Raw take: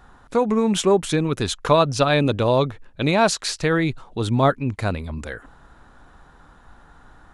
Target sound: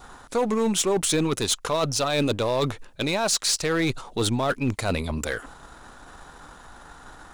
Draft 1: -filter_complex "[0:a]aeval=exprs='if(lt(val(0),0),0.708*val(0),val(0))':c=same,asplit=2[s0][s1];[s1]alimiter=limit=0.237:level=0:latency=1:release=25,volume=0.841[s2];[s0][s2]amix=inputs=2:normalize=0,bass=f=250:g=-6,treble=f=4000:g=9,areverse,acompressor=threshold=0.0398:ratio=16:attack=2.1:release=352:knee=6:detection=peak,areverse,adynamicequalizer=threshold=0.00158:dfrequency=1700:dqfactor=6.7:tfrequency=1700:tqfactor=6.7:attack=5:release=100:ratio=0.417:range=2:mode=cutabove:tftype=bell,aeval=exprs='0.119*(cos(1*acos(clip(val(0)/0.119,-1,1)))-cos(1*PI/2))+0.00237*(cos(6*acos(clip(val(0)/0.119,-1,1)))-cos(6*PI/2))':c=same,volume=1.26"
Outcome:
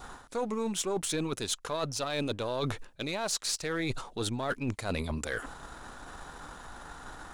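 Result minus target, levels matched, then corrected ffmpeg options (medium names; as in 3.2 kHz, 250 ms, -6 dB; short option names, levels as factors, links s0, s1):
compression: peak gain reduction +10 dB
-filter_complex "[0:a]aeval=exprs='if(lt(val(0),0),0.708*val(0),val(0))':c=same,asplit=2[s0][s1];[s1]alimiter=limit=0.237:level=0:latency=1:release=25,volume=0.841[s2];[s0][s2]amix=inputs=2:normalize=0,bass=f=250:g=-6,treble=f=4000:g=9,areverse,acompressor=threshold=0.133:ratio=16:attack=2.1:release=352:knee=6:detection=peak,areverse,adynamicequalizer=threshold=0.00158:dfrequency=1700:dqfactor=6.7:tfrequency=1700:tqfactor=6.7:attack=5:release=100:ratio=0.417:range=2:mode=cutabove:tftype=bell,aeval=exprs='0.119*(cos(1*acos(clip(val(0)/0.119,-1,1)))-cos(1*PI/2))+0.00237*(cos(6*acos(clip(val(0)/0.119,-1,1)))-cos(6*PI/2))':c=same,volume=1.26"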